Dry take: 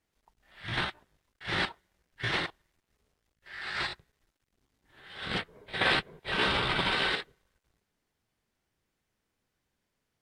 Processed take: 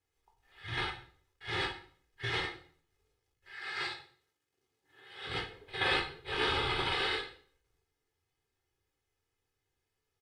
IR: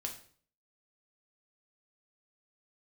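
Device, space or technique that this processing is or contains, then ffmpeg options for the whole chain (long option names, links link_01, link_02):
microphone above a desk: -filter_complex "[0:a]aecho=1:1:2.4:0.73[link_01];[1:a]atrim=start_sample=2205[link_02];[link_01][link_02]afir=irnorm=-1:irlink=0,asettb=1/sr,asplit=3[link_03][link_04][link_05];[link_03]atrim=end=3.544[link_06];[link_04]atrim=start=3.54:end=5.29,asetpts=PTS-STARTPTS,afade=type=in:duration=0.004:curve=qsin,afade=type=out:start_time=1.746:duration=0.004:curve=qsin,highpass=150[link_07];[link_05]atrim=start=5.286[link_08];[link_06][link_07]acrossfade=duration=0.004:curve1=hsin:curve2=qsin[link_09];[link_09][link_08]acrossfade=duration=0.004:curve1=qsin:curve2=hsin,volume=-4.5dB"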